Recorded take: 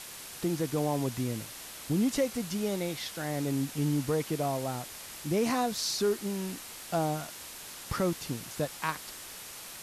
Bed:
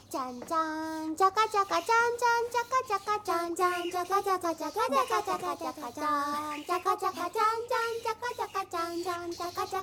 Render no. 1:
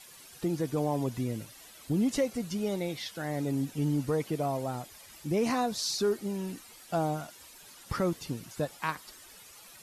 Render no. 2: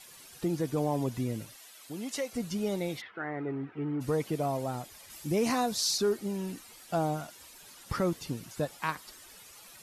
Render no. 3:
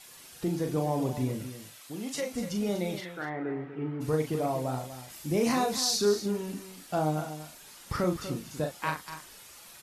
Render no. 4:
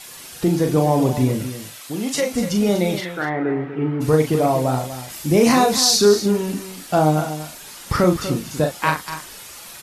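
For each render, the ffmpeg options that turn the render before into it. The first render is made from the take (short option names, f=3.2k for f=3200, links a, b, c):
-af "afftdn=nr=12:nf=-45"
-filter_complex "[0:a]asettb=1/sr,asplit=3[a][b][c];[a]atrim=end=1.564[d];[b]atrim=start=1.56:end=2.33,asetpts=PTS-STARTPTS,afade=t=in:d=0.004:c=qsin,afade=t=out:st=0.766:d=0.004:c=qsin,highpass=f=880:p=1[e];[c]atrim=start=2.326[f];[d][e]acrossfade=d=0.004:c1=hsin:c2=qsin[g];[g][f]acrossfade=d=0.004:c1=qsin:c2=hsin,asplit=3[h][i][j];[h]afade=t=out:st=3:d=0.02[k];[i]highpass=150,equalizer=f=170:t=q:w=4:g=-10,equalizer=f=250:t=q:w=4:g=-8,equalizer=f=380:t=q:w=4:g=6,equalizer=f=560:t=q:w=4:g=-7,equalizer=f=1.3k:t=q:w=4:g=8,equalizer=f=2k:t=q:w=4:g=3,lowpass=f=2.2k:w=0.5412,lowpass=f=2.2k:w=1.3066,afade=t=in:st=3:d=0.02,afade=t=out:st=4:d=0.02[l];[j]afade=t=in:st=4:d=0.02[m];[k][l][m]amix=inputs=3:normalize=0,asettb=1/sr,asplit=3[n][o][p];[n]atrim=end=5.104[q];[o]atrim=start=5.1:end=5.98,asetpts=PTS-STARTPTS,afade=t=in:d=0.004:c=qsin,afade=t=out:st=0.876:d=0.004:c=qsin,highshelf=f=4.6k:g=5.5[r];[p]atrim=start=5.976[s];[q][r]acrossfade=d=0.004:c1=hsin:c2=qsin[t];[t][s]acrossfade=d=0.004:c1=qsin:c2=hsin"
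-filter_complex "[0:a]asplit=2[a][b];[b]adelay=39,volume=-5dB[c];[a][c]amix=inputs=2:normalize=0,aecho=1:1:243:0.266"
-af "volume=12dB,alimiter=limit=-3dB:level=0:latency=1"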